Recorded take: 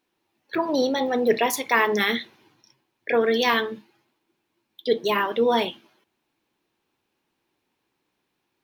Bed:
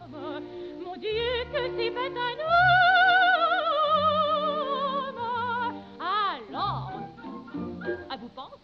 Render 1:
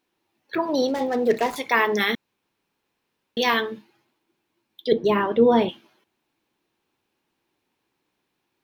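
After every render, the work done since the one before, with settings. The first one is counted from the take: 0.88–1.56 s: median filter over 15 samples; 2.15–3.37 s: room tone; 4.92–5.69 s: tilt EQ -3.5 dB/octave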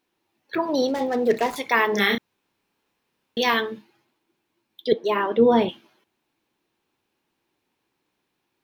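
1.91–3.40 s: doubling 30 ms -3 dB; 4.93–5.37 s: high-pass 680 Hz -> 190 Hz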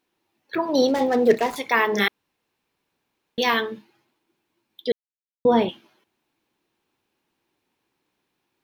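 0.75–1.35 s: gain +3.5 dB; 2.08–3.38 s: room tone; 4.92–5.45 s: mute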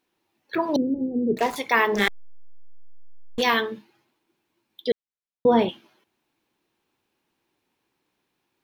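0.76–1.37 s: inverse Chebyshev low-pass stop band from 1.2 kHz, stop band 60 dB; 1.95–3.42 s: hysteresis with a dead band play -23.5 dBFS; 4.91–5.59 s: distance through air 100 m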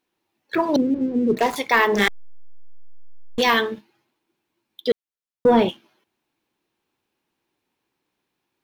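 waveshaping leveller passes 1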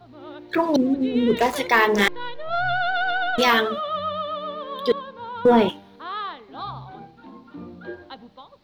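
add bed -4 dB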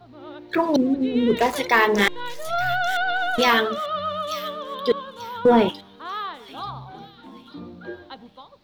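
feedback echo behind a high-pass 889 ms, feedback 32%, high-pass 4.5 kHz, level -5 dB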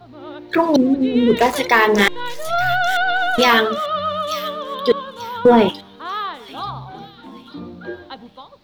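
trim +5 dB; peak limiter -3 dBFS, peak gain reduction 2 dB

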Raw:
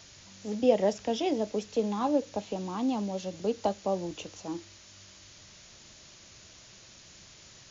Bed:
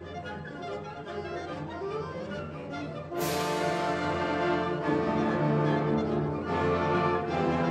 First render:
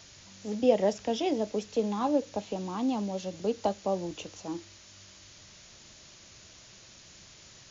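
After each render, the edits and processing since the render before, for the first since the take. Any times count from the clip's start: no audible change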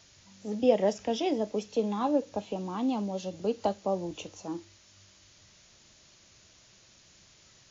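noise print and reduce 6 dB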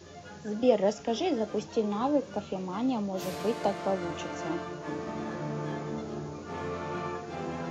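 add bed -8.5 dB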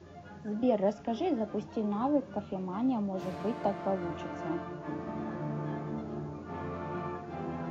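low-pass 1.1 kHz 6 dB/octave; peaking EQ 470 Hz -10 dB 0.24 oct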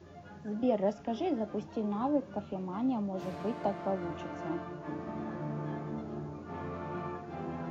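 trim -1.5 dB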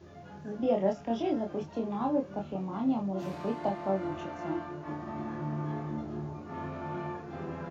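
doubling 26 ms -3 dB

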